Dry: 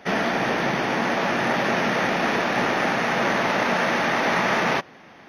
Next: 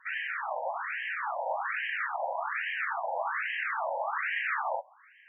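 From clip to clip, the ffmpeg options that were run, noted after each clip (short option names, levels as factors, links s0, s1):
-af "areverse,acompressor=mode=upward:threshold=0.00562:ratio=2.5,areverse,afftfilt=real='re*between(b*sr/1024,690*pow(2300/690,0.5+0.5*sin(2*PI*1.2*pts/sr))/1.41,690*pow(2300/690,0.5+0.5*sin(2*PI*1.2*pts/sr))*1.41)':imag='im*between(b*sr/1024,690*pow(2300/690,0.5+0.5*sin(2*PI*1.2*pts/sr))/1.41,690*pow(2300/690,0.5+0.5*sin(2*PI*1.2*pts/sr))*1.41)':win_size=1024:overlap=0.75,volume=0.562"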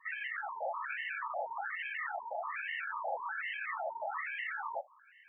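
-af "alimiter=level_in=1.58:limit=0.0631:level=0:latency=1:release=10,volume=0.631,afftfilt=real='re*gt(sin(2*PI*4.1*pts/sr)*(1-2*mod(floor(b*sr/1024/440),2)),0)':imag='im*gt(sin(2*PI*4.1*pts/sr)*(1-2*mod(floor(b*sr/1024/440),2)),0)':win_size=1024:overlap=0.75"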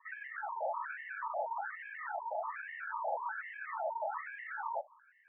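-af "highpass=f=250:w=0.5412,highpass=f=250:w=1.3066,equalizer=f=290:t=q:w=4:g=-10,equalizer=f=440:t=q:w=4:g=5,equalizer=f=620:t=q:w=4:g=8,equalizer=f=920:t=q:w=4:g=9,equalizer=f=1500:t=q:w=4:g=5,lowpass=f=2000:w=0.5412,lowpass=f=2000:w=1.3066,volume=0.501"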